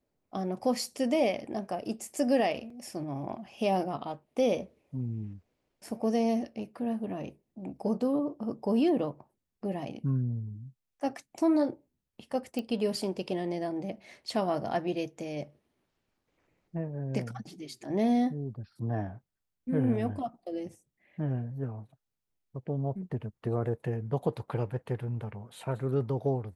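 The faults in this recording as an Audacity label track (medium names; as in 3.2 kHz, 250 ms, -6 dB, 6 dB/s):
2.700000	2.700000	dropout 3.6 ms
12.590000	12.590000	pop -22 dBFS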